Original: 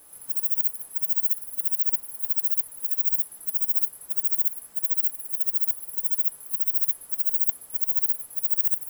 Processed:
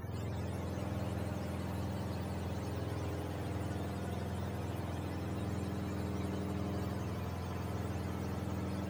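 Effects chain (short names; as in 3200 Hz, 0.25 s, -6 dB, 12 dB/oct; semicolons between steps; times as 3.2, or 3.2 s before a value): spectrum mirrored in octaves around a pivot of 750 Hz; swelling echo 83 ms, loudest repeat 5, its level -11 dB; gain +17 dB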